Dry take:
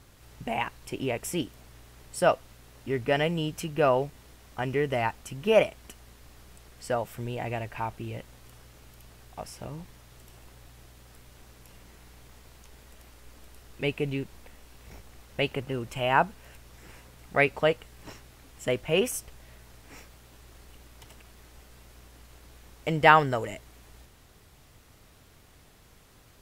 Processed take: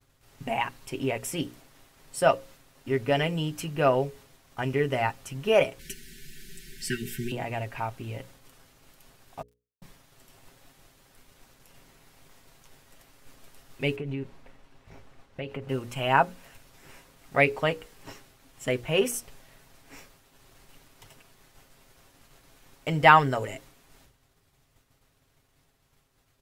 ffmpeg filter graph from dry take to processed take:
-filter_complex "[0:a]asettb=1/sr,asplit=3[a][b][c];[a]atrim=end=5.794[d];[b]atrim=start=5.79:end=7.32,asetpts=PTS-STARTPTS,afade=t=in:d=0.004:c=qsin,afade=t=out:st=1.526:d=0.004:c=qsin,acontrast=33,asuperstop=centerf=780:order=20:qfactor=0.7,aecho=1:1:5.2:0.89,atrim=end_sample=67473[e];[c]atrim=start=7.316[f];[d][e]acrossfade=d=0.004:c1=hsin:c2=qsin[g];[g][f]acrossfade=d=0.004:c1=qsin:c2=hsin,asettb=1/sr,asplit=3[h][i][j];[h]atrim=end=9.424[k];[i]atrim=start=9.42:end=9.82,asetpts=PTS-STARTPTS,afade=t=in:d=0.004:c=qsin,afade=t=out:st=0.396:d=0.004:c=qsin,tiltshelf=f=1.5k:g=-6.5,acrusher=bits=3:mix=0:aa=0.5[l];[j]atrim=start=9.816[m];[k][l]acrossfade=d=0.004:c1=hsin:c2=qsin[n];[n][m]acrossfade=d=0.004:c1=qsin:c2=hsin,asettb=1/sr,asplit=3[o][p][q];[o]atrim=end=13.964[r];[p]atrim=start=13.96:end=15.69,asetpts=PTS-STARTPTS,afade=t=in:d=0.004:c=qsin,afade=t=out:st=1.726:d=0.004:c=qsin,aemphasis=mode=reproduction:type=75kf,acompressor=threshold=-31dB:ratio=6:attack=3.2:release=140:knee=1:detection=peak[s];[q]atrim=start=15.686[t];[r][s]acrossfade=d=0.004:c1=hsin:c2=qsin[u];[u][t]acrossfade=d=0.004:c1=qsin:c2=hsin,agate=range=-33dB:threshold=-47dB:ratio=3:detection=peak,bandreject=f=60:t=h:w=6,bandreject=f=120:t=h:w=6,bandreject=f=180:t=h:w=6,bandreject=f=240:t=h:w=6,bandreject=f=300:t=h:w=6,bandreject=f=360:t=h:w=6,bandreject=f=420:t=h:w=6,bandreject=f=480:t=h:w=6,bandreject=f=540:t=h:w=6,aecho=1:1:7.4:0.45"

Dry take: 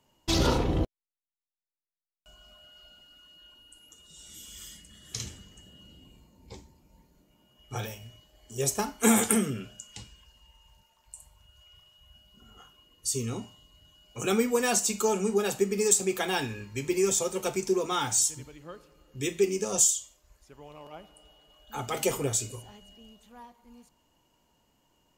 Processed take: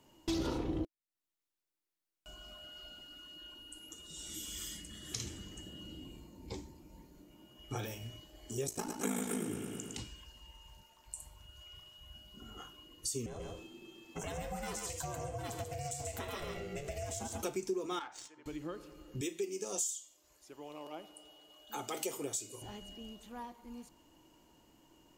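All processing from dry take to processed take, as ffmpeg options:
-filter_complex "[0:a]asettb=1/sr,asplit=3[a][b][c];[a]atrim=end=8.664[d];[b]atrim=start=8.66:end=9.99,asetpts=PTS-STARTPTS,afade=t=in:d=0.004:c=qsin,afade=t=out:st=1.326:d=0.004:c=qsin,aeval=exprs='val(0)*sin(2*PI*27*n/s)':c=same,aecho=1:1:109|218|327|436|545|654|763:0.447|0.25|0.14|0.0784|0.0439|0.0246|0.0138,atrim=end_sample=58653[e];[c]atrim=start=9.986[f];[d][e]acrossfade=d=0.004:c1=hsin:c2=qsin[g];[g][f]acrossfade=d=0.004:c1=qsin:c2=hsin,asettb=1/sr,asplit=3[h][i][j];[h]atrim=end=13.264[k];[i]atrim=start=13.26:end=17.43,asetpts=PTS-STARTPTS,afade=t=in:d=0.004:c=qsin,afade=t=out:st=4.166:d=0.004:c=qsin,acompressor=threshold=-37dB:ratio=2.5:attack=3.2:release=140:knee=1:detection=peak,aeval=exprs='val(0)*sin(2*PI*290*n/s)':c=same,aecho=1:1:139:0.562,atrim=end_sample=183897[l];[j]atrim=start=17.426[m];[k][l]acrossfade=d=0.004:c1=hsin:c2=qsin[n];[n][m]acrossfade=d=0.004:c1=qsin:c2=hsin,asettb=1/sr,asplit=3[o][p][q];[o]atrim=end=17.994[r];[p]atrim=start=17.99:end=18.46,asetpts=PTS-STARTPTS,afade=t=in:d=0.004:c=qsin,afade=t=out:st=0.466:d=0.004:c=qsin,highpass=1k,highshelf=f=4.5k:g=-10,adynamicsmooth=sensitivity=3:basefreq=1.4k[s];[q]atrim=start=18.456[t];[r][s]acrossfade=d=0.004:c1=hsin:c2=qsin[u];[u][t]acrossfade=d=0.004:c1=qsin:c2=hsin,asettb=1/sr,asplit=3[v][w][x];[v]atrim=end=19.214[y];[w]atrim=start=19.21:end=22.62,asetpts=PTS-STARTPTS,afade=t=in:d=0.004:c=qsin,afade=t=out:st=3.406:d=0.004:c=qsin,highpass=f=570:p=1,equalizer=f=1.6k:t=o:w=1.7:g=-5[z];[x]atrim=start=22.616[aa];[y][z]acrossfade=d=0.004:c1=hsin:c2=qsin[ab];[ab][aa]acrossfade=d=0.004:c1=qsin:c2=hsin,equalizer=f=320:t=o:w=0.39:g=10.5,acompressor=threshold=-42dB:ratio=3,volume=3dB"

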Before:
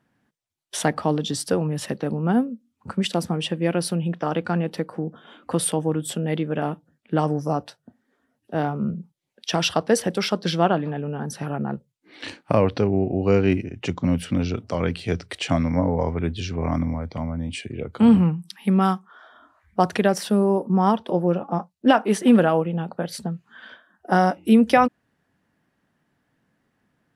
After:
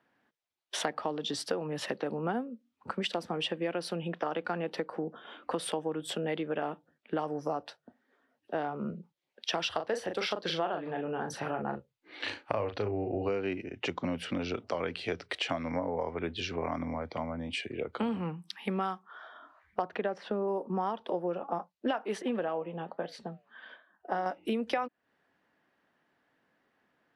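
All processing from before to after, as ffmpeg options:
-filter_complex "[0:a]asettb=1/sr,asplit=3[a][b][c];[a]atrim=end=9.694[d];[b]atrim=start=9.69:end=13.29,asetpts=PTS-STARTPTS,afade=t=in:d=0.004:c=qsin,afade=t=out:st=3.596:d=0.004:c=qsin,lowshelf=f=130:t=q:w=1.5:g=8,bandreject=f=5.3k:w=22,asplit=2[e][f];[f]adelay=38,volume=-7dB[g];[e][g]amix=inputs=2:normalize=0,atrim=end_sample=158760[h];[c]atrim=start=13.286[i];[d][h]acrossfade=d=0.004:c1=hsin:c2=qsin[j];[j][i]acrossfade=d=0.004:c1=qsin:c2=hsin,asettb=1/sr,asplit=3[k][l][m];[k]atrim=end=19.824[n];[l]atrim=start=19.82:end=20.48,asetpts=PTS-STARTPTS,afade=t=in:d=0.004:c=qsin,afade=t=out:st=0.656:d=0.004:c=qsin,lowpass=f=2.5k:p=1,aemphasis=mode=reproduction:type=50fm[o];[m]atrim=start=20.476[p];[n][o]acrossfade=d=0.004:c1=hsin:c2=qsin[q];[q][p]acrossfade=d=0.004:c1=qsin:c2=hsin,asettb=1/sr,asplit=3[r][s][t];[r]atrim=end=22.224[u];[s]atrim=start=22.22:end=24.26,asetpts=PTS-STARTPTS,afade=t=in:d=0.004:c=qsin,afade=t=out:st=2.036:d=0.004:c=qsin,lowpass=f=3.4k:p=1,bandreject=f=1.4k:w=10,flanger=delay=4.7:depth=3.3:regen=-88:speed=1.2:shape=triangular[v];[t]atrim=start=24.256[w];[u][v]acrossfade=d=0.004:c1=hsin:c2=qsin[x];[x][w]acrossfade=d=0.004:c1=qsin:c2=hsin,acrossover=split=310 5000:gain=0.178 1 0.2[y][z][aa];[y][z][aa]amix=inputs=3:normalize=0,acompressor=threshold=-29dB:ratio=6"

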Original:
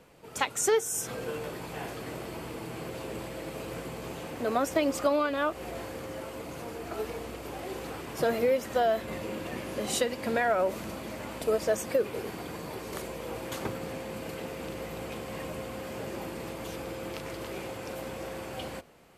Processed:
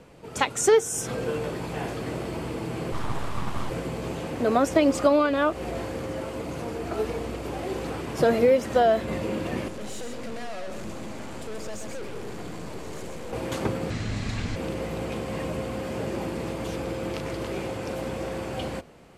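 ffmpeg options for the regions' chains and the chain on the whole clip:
-filter_complex "[0:a]asettb=1/sr,asplit=3[a][b][c];[a]atrim=end=2.924[d];[b]atrim=start=2.92:end=3.7,asetpts=PTS-STARTPTS,afade=t=in:d=0.004:c=qsin,afade=t=out:st=0.776:d=0.004:c=qsin,equalizer=f=610:t=o:w=0.59:g=9.5,aeval=exprs='abs(val(0))':c=same[e];[c]atrim=start=3.696[f];[d][e]acrossfade=d=0.004:c1=hsin:c2=qsin[g];[g][f]acrossfade=d=0.004:c1=qsin:c2=hsin,asettb=1/sr,asplit=3[h][i][j];[h]atrim=end=9.684[k];[i]atrim=start=9.68:end=13.33,asetpts=PTS-STARTPTS,afade=t=in:d=0.004:c=qsin,afade=t=out:st=3.646:d=0.004:c=qsin,equalizer=f=7.1k:w=3.8:g=6,aeval=exprs='(tanh(126*val(0)+0.75)-tanh(0.75))/126':c=same,aecho=1:1:129:0.501,atrim=end_sample=160965[l];[j]atrim=start=13.326[m];[k][l]acrossfade=d=0.004:c1=hsin:c2=qsin[n];[n][m]acrossfade=d=0.004:c1=qsin:c2=hsin,asettb=1/sr,asplit=3[o][p][q];[o]atrim=end=13.904[r];[p]atrim=start=13.9:end=14.56,asetpts=PTS-STARTPTS,afade=t=in:d=0.004:c=qsin,afade=t=out:st=0.656:d=0.004:c=qsin,highpass=170,lowpass=7.8k,equalizer=f=5.1k:t=o:w=1.9:g=8.5,afreqshift=-420[s];[q]atrim=start=14.556[t];[r][s]acrossfade=d=0.004:c1=hsin:c2=qsin[u];[u][t]acrossfade=d=0.004:c1=qsin:c2=hsin,lowpass=10k,lowshelf=f=490:g=6,volume=3.5dB"

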